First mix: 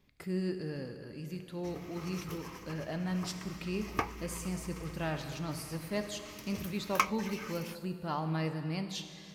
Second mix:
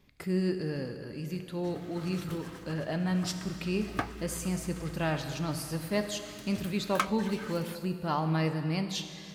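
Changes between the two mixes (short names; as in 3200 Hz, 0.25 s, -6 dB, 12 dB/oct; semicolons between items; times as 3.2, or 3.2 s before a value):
speech +5.0 dB; background: remove ripple EQ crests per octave 0.8, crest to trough 10 dB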